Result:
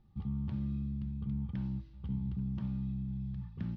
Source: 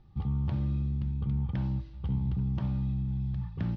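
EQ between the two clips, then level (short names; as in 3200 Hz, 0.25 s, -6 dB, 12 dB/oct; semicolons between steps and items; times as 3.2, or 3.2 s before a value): dynamic EQ 650 Hz, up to -6 dB, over -57 dBFS, Q 1.4; bell 210 Hz +8.5 dB 0.36 oct; -8.0 dB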